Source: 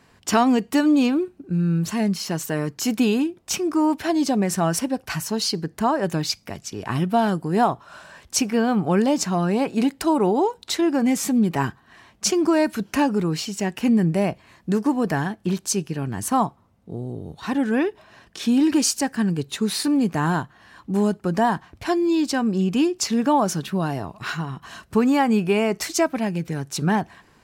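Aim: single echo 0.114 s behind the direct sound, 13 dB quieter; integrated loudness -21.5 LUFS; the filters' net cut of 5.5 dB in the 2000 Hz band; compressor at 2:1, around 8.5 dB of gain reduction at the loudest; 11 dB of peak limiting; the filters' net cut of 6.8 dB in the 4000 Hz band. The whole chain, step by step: bell 2000 Hz -5.5 dB; bell 4000 Hz -8 dB; compressor 2:1, threshold -31 dBFS; limiter -26 dBFS; echo 0.114 s -13 dB; gain +12.5 dB

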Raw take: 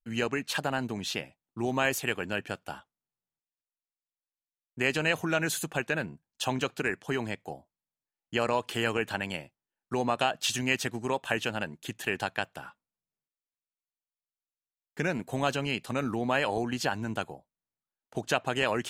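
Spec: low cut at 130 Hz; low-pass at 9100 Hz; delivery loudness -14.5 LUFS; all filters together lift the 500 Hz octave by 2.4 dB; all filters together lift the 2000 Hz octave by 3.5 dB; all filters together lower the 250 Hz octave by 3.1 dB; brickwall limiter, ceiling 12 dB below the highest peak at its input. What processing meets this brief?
HPF 130 Hz; LPF 9100 Hz; bell 250 Hz -5 dB; bell 500 Hz +4 dB; bell 2000 Hz +4.5 dB; gain +19 dB; limiter -0.5 dBFS

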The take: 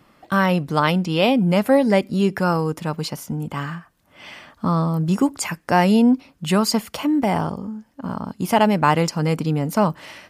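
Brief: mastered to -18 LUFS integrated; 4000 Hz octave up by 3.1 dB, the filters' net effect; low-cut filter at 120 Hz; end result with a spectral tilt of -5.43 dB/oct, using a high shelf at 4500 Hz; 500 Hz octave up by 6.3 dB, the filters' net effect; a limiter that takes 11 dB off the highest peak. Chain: HPF 120 Hz; bell 500 Hz +7.5 dB; bell 4000 Hz +7 dB; high shelf 4500 Hz -5 dB; gain +4 dB; limiter -6.5 dBFS

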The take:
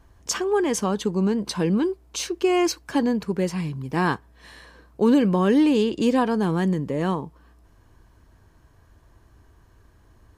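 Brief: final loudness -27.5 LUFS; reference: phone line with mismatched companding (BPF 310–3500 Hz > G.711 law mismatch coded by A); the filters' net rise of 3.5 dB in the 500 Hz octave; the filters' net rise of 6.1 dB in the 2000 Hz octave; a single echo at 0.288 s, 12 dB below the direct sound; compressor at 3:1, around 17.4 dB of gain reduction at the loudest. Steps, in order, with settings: bell 500 Hz +5.5 dB; bell 2000 Hz +8 dB; compressor 3:1, threshold -37 dBFS; BPF 310–3500 Hz; echo 0.288 s -12 dB; G.711 law mismatch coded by A; gain +12.5 dB

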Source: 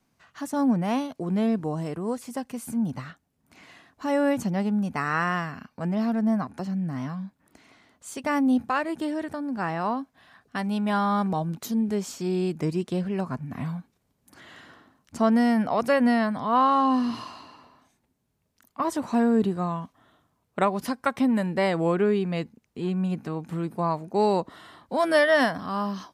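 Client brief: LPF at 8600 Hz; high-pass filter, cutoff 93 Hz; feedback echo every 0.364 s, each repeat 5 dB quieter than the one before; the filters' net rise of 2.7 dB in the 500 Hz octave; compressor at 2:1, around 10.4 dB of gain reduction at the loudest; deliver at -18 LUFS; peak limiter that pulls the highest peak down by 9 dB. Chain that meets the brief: HPF 93 Hz; LPF 8600 Hz; bell 500 Hz +3.5 dB; compressor 2:1, threshold -34 dBFS; limiter -24.5 dBFS; feedback echo 0.364 s, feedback 56%, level -5 dB; gain +15 dB

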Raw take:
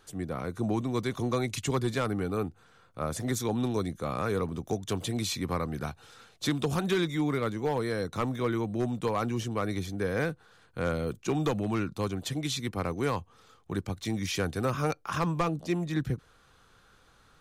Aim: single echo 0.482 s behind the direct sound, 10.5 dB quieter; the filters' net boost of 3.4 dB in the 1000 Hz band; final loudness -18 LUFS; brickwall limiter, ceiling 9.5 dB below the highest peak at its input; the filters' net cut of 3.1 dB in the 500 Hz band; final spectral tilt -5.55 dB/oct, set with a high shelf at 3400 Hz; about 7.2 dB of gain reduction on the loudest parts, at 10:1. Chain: bell 500 Hz -5 dB; bell 1000 Hz +6.5 dB; high shelf 3400 Hz -8.5 dB; compressor 10:1, threshold -30 dBFS; limiter -29 dBFS; echo 0.482 s -10.5 dB; gain +20.5 dB

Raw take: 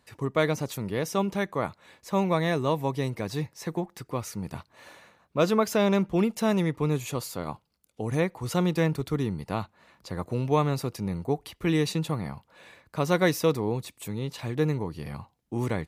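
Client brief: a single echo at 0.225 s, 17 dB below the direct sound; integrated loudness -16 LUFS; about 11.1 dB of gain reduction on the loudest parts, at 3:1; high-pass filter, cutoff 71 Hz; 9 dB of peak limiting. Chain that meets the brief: HPF 71 Hz; compressor 3:1, threshold -33 dBFS; limiter -28 dBFS; echo 0.225 s -17 dB; gain +23.5 dB

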